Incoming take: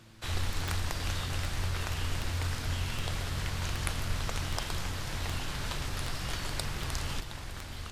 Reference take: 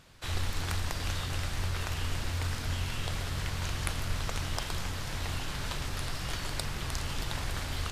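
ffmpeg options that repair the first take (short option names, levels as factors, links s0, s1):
-af "adeclick=t=4,bandreject=f=110.6:t=h:w=4,bandreject=f=221.2:t=h:w=4,bandreject=f=331.8:t=h:w=4,asetnsamples=n=441:p=0,asendcmd='7.2 volume volume 7dB',volume=1"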